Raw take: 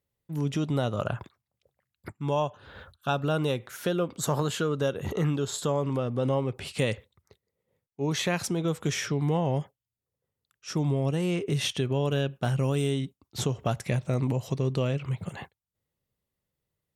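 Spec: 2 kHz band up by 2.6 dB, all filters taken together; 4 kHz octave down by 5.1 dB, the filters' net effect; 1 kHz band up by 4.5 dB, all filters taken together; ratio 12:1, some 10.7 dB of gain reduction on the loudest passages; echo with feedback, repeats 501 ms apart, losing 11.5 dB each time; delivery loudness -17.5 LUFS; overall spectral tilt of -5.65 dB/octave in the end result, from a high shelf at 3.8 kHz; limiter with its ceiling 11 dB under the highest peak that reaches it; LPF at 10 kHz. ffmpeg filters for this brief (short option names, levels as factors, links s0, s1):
-af "lowpass=10000,equalizer=f=1000:t=o:g=5.5,equalizer=f=2000:t=o:g=4.5,highshelf=f=3800:g=-5,equalizer=f=4000:t=o:g=-6,acompressor=threshold=0.0282:ratio=12,alimiter=level_in=1.68:limit=0.0631:level=0:latency=1,volume=0.596,aecho=1:1:501|1002|1503:0.266|0.0718|0.0194,volume=12.6"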